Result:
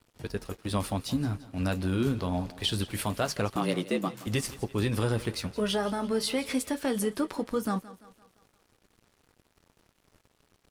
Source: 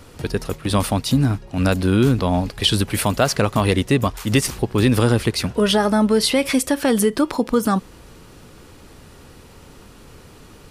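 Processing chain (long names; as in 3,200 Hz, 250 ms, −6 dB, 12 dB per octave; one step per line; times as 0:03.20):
tape wow and flutter 17 cents
flanger 0.24 Hz, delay 8.9 ms, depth 3.2 ms, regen −54%
0:03.56–0:04.27: frequency shifter +83 Hz
dead-zone distortion −45 dBFS
on a send: feedback echo with a high-pass in the loop 171 ms, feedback 50%, high-pass 180 Hz, level −17 dB
on the sum: level −7 dB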